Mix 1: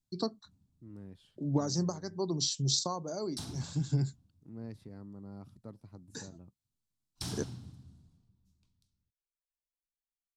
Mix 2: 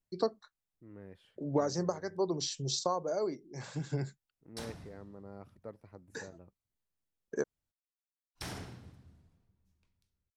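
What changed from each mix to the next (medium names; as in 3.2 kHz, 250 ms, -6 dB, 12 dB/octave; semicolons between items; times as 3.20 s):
background: entry +1.20 s; master: add ten-band graphic EQ 125 Hz -6 dB, 250 Hz -5 dB, 500 Hz +8 dB, 2 kHz +10 dB, 4 kHz -6 dB, 8 kHz -5 dB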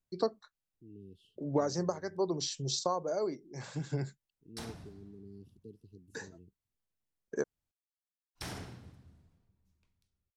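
second voice: add brick-wall FIR band-stop 460–2600 Hz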